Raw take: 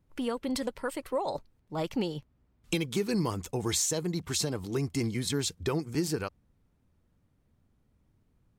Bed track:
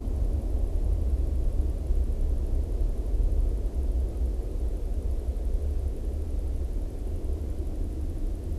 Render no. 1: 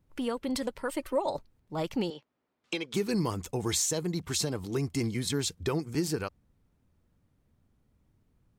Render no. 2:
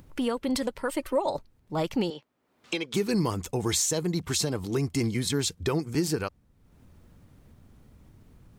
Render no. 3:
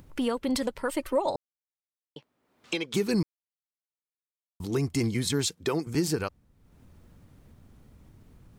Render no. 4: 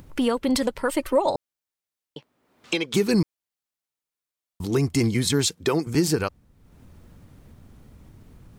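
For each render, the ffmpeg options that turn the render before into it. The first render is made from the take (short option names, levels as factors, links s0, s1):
-filter_complex "[0:a]asettb=1/sr,asplit=3[s0][s1][s2];[s0]atrim=end=0.894[s3];[s1]atrim=start=0.89:end=1.3,asetpts=PTS-STARTPTS,afade=t=in:d=0.004:c=qsin,afade=t=out:st=0.406:d=0.004:c=qsin,aecho=1:1:3.3:0.65,atrim=end_sample=18081[s4];[s2]atrim=start=1.296[s5];[s3][s4]acrossfade=d=0.004:c1=hsin:c2=qsin[s6];[s6][s5]acrossfade=d=0.004:c1=qsin:c2=hsin,asettb=1/sr,asplit=3[s7][s8][s9];[s7]atrim=end=2.104[s10];[s8]atrim=start=2.1:end=2.94,asetpts=PTS-STARTPTS,afade=t=in:d=0.004:c=qsin,afade=t=out:st=0.836:d=0.004:c=qsin,highpass=380,lowpass=5100[s11];[s9]atrim=start=2.936[s12];[s10][s11]acrossfade=d=0.004:c1=hsin:c2=qsin[s13];[s13][s12]acrossfade=d=0.004:c1=qsin:c2=hsin"
-filter_complex "[0:a]asplit=2[s0][s1];[s1]alimiter=level_in=1.19:limit=0.0631:level=0:latency=1:release=425,volume=0.841,volume=0.794[s2];[s0][s2]amix=inputs=2:normalize=0,acompressor=mode=upward:threshold=0.00708:ratio=2.5"
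-filter_complex "[0:a]asettb=1/sr,asplit=3[s0][s1][s2];[s0]atrim=end=5.464[s3];[s1]atrim=start=5.46:end=5.87,asetpts=PTS-STARTPTS,afade=t=in:d=0.004:c=qsin,afade=t=out:st=0.406:d=0.004:c=qsin,highpass=190[s4];[s2]atrim=start=5.866[s5];[s3][s4]acrossfade=d=0.004:c1=hsin:c2=qsin[s6];[s6][s5]acrossfade=d=0.004:c1=qsin:c2=hsin,asplit=5[s7][s8][s9][s10][s11];[s7]atrim=end=1.36,asetpts=PTS-STARTPTS,afade=t=out:st=1.356:d=0.004:c=hsin[s12];[s8]atrim=start=1.36:end=2.16,asetpts=PTS-STARTPTS,volume=0[s13];[s9]atrim=start=2.16:end=3.23,asetpts=PTS-STARTPTS,afade=t=in:d=0.004:c=hsin,afade=t=out:st=1.066:d=0.004:c=hsin[s14];[s10]atrim=start=3.23:end=4.6,asetpts=PTS-STARTPTS,volume=0[s15];[s11]atrim=start=4.6,asetpts=PTS-STARTPTS,afade=t=in:d=0.004:c=hsin[s16];[s12][s13][s14][s15][s16]concat=n=5:v=0:a=1"
-af "volume=1.88"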